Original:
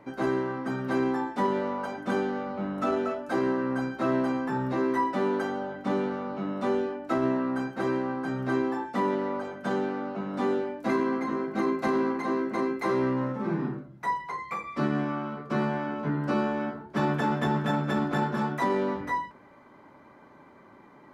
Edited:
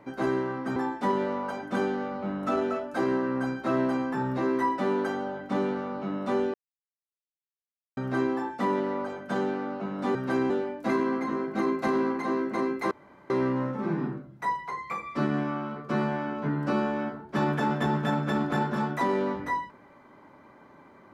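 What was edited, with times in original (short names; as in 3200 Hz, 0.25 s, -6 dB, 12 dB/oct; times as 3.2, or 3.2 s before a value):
0.76–1.11 move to 10.5
6.89–8.32 mute
12.91 insert room tone 0.39 s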